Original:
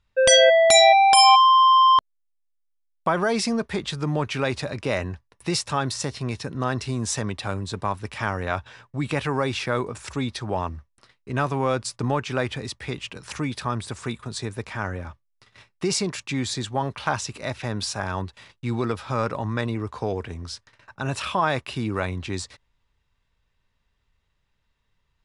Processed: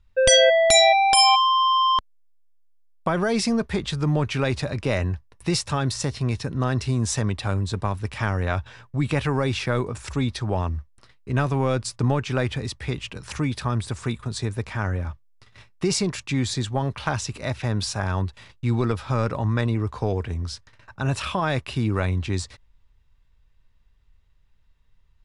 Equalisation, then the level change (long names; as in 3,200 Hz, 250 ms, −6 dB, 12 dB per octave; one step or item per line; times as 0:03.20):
dynamic equaliser 1,000 Hz, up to −5 dB, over −28 dBFS, Q 1.3
low-shelf EQ 68 Hz +10 dB
low-shelf EQ 150 Hz +5.5 dB
0.0 dB